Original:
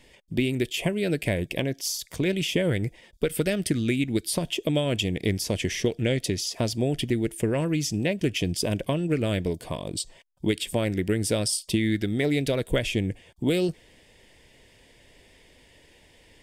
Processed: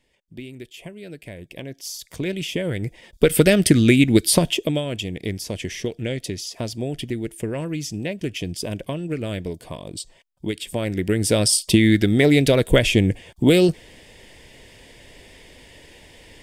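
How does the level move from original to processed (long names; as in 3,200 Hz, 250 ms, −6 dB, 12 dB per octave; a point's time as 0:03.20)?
0:01.32 −12 dB
0:02.07 −1 dB
0:02.74 −1 dB
0:03.29 +10.5 dB
0:04.38 +10.5 dB
0:04.89 −2 dB
0:10.58 −2 dB
0:11.57 +9 dB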